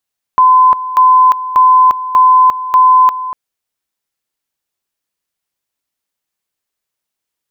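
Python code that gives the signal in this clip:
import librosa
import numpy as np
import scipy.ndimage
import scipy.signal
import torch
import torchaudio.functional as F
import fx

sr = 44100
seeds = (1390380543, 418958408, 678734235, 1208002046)

y = fx.two_level_tone(sr, hz=1020.0, level_db=-3.5, drop_db=14.0, high_s=0.35, low_s=0.24, rounds=5)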